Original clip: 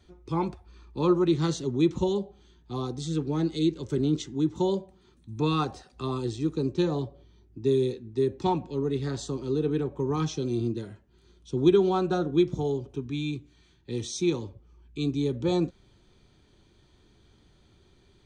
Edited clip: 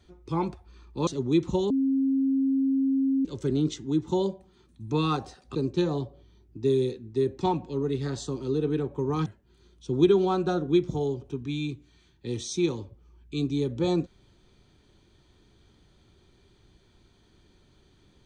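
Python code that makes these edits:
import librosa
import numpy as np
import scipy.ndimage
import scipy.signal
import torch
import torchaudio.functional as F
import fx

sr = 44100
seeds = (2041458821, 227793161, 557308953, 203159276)

y = fx.edit(x, sr, fx.cut(start_s=1.07, length_s=0.48),
    fx.bleep(start_s=2.18, length_s=1.55, hz=269.0, db=-21.0),
    fx.cut(start_s=6.03, length_s=0.53),
    fx.cut(start_s=10.27, length_s=0.63), tone=tone)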